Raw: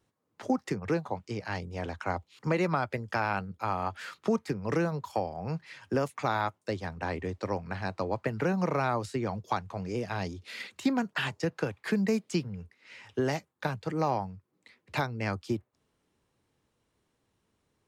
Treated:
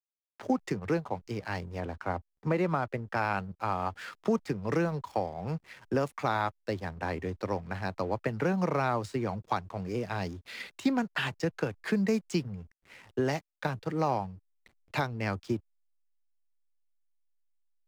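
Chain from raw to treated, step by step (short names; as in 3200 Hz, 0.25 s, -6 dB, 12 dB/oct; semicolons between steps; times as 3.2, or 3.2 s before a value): 1.8–3.17 high shelf 2900 Hz -10.5 dB; backlash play -46 dBFS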